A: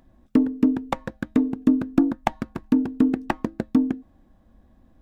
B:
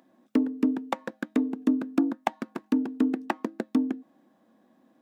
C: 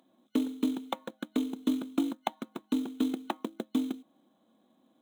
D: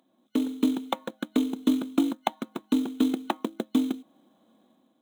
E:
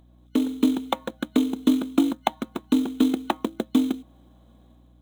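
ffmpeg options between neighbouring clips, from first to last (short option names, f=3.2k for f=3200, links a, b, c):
-filter_complex "[0:a]highpass=f=220:w=0.5412,highpass=f=220:w=1.3066,asplit=2[a][b];[b]acompressor=threshold=-28dB:ratio=6,volume=1dB[c];[a][c]amix=inputs=2:normalize=0,volume=-6.5dB"
-af "acrusher=bits=5:mode=log:mix=0:aa=0.000001,superequalizer=11b=0.501:13b=2.51:14b=0.355,volume=-5dB"
-af "dynaudnorm=f=110:g=7:m=7dB,volume=-1.5dB"
-af "aeval=exprs='val(0)+0.00141*(sin(2*PI*60*n/s)+sin(2*PI*2*60*n/s)/2+sin(2*PI*3*60*n/s)/3+sin(2*PI*4*60*n/s)/4+sin(2*PI*5*60*n/s)/5)':c=same,volume=3.5dB"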